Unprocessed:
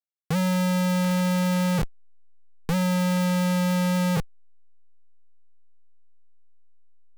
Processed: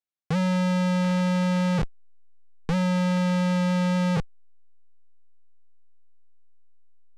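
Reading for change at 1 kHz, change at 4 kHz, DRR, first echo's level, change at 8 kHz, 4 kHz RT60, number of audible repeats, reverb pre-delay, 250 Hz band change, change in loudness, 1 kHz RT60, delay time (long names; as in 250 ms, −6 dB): −0.5 dB, −2.5 dB, no reverb audible, no echo audible, −7.5 dB, no reverb audible, no echo audible, no reverb audible, 0.0 dB, −0.5 dB, no reverb audible, no echo audible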